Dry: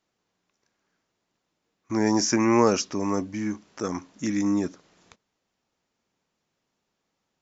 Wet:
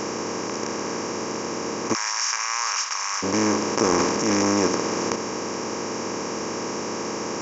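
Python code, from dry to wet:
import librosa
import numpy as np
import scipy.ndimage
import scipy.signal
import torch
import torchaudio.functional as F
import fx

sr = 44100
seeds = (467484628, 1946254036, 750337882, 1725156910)

y = fx.bin_compress(x, sr, power=0.2)
y = fx.highpass(y, sr, hz=1100.0, slope=24, at=(1.93, 3.22), fade=0.02)
y = fx.transient(y, sr, attack_db=-7, sustain_db=9, at=(3.85, 4.52), fade=0.02)
y = y * 10.0 ** (-2.5 / 20.0)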